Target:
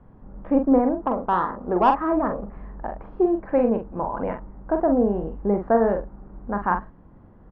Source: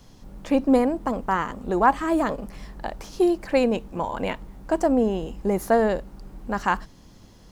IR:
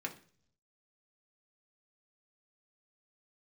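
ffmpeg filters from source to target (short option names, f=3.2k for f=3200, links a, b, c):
-filter_complex "[0:a]lowpass=f=1.5k:w=0.5412,lowpass=f=1.5k:w=1.3066,asettb=1/sr,asplit=3[a][b][c];[a]atrim=end=1.004[d];[b]atrim=start=1:end=2.12,asetpts=PTS-STARTPTS,afade=t=in:d=0.004:c=qsin,afade=t=out:st=1.116:d=0.004:c=qsin,asplit=2[e][f];[f]highpass=f=720:p=1,volume=12dB,asoftclip=type=tanh:threshold=-7dB[g];[e][g]amix=inputs=2:normalize=0,lowpass=f=1.1k:p=1,volume=-6dB[h];[c]atrim=start=2.116[i];[d][h]acrossfade=d=0.004:c1=hsin:c2=qsin[j];[j][i]acrossfade=d=0.004:c1=qsin:c2=hsin,asplit=2[k][l];[l]adelay=44,volume=-6dB[m];[k][m]amix=inputs=2:normalize=0"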